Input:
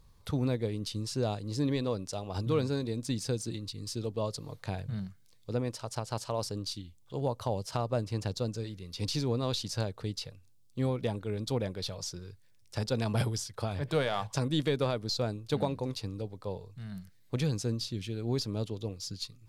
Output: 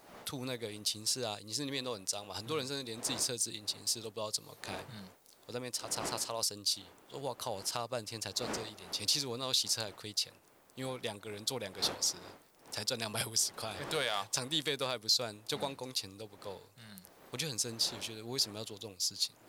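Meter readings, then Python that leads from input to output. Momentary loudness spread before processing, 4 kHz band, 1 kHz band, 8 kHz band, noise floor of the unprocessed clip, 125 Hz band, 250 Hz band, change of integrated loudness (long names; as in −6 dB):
9 LU, +5.5 dB, −2.5 dB, +8.0 dB, −60 dBFS, −15.0 dB, −10.5 dB, −1.0 dB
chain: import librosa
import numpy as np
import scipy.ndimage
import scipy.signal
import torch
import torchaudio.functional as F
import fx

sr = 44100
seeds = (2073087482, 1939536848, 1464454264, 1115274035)

y = fx.dmg_wind(x, sr, seeds[0], corner_hz=540.0, level_db=-45.0)
y = fx.tilt_eq(y, sr, slope=4.0)
y = y * librosa.db_to_amplitude(-3.0)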